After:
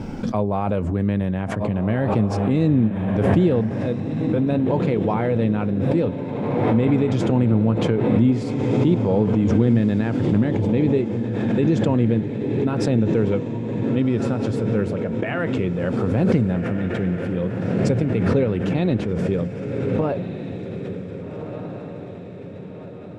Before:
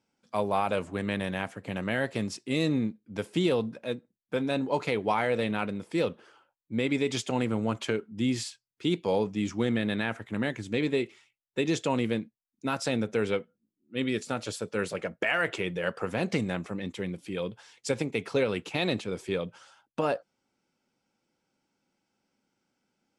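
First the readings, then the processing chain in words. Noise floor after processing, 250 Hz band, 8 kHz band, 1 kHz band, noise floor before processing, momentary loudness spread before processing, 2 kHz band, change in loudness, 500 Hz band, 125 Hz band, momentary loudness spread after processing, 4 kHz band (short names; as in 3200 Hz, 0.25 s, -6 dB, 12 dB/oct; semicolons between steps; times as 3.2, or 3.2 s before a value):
-35 dBFS, +11.5 dB, n/a, +4.0 dB, -85 dBFS, 8 LU, -1.0 dB, +9.5 dB, +7.5 dB, +16.0 dB, 12 LU, -3.5 dB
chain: tilt -4.5 dB/oct; diffused feedback echo 1.592 s, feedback 53%, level -8 dB; backwards sustainer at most 25 dB/s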